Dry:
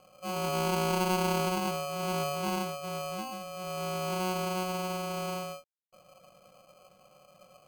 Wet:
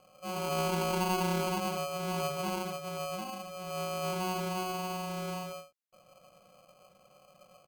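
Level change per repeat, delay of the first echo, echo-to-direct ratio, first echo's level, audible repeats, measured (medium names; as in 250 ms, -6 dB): no regular repeats, 86 ms, -7.5 dB, -7.5 dB, 1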